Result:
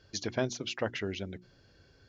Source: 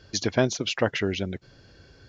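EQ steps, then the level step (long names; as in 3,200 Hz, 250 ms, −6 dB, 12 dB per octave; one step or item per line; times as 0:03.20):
mains-hum notches 60/120/180/240/300/360 Hz
−8.5 dB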